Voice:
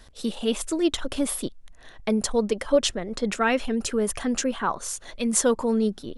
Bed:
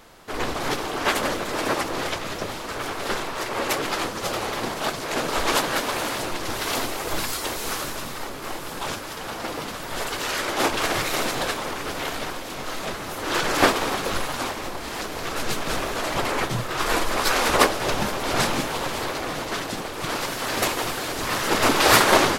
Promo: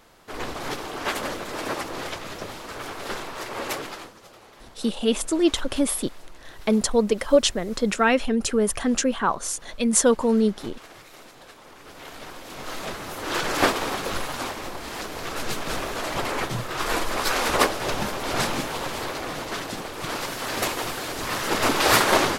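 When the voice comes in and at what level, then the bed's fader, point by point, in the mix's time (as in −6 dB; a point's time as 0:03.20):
4.60 s, +3.0 dB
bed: 0:03.76 −5 dB
0:04.28 −22 dB
0:11.41 −22 dB
0:12.72 −2.5 dB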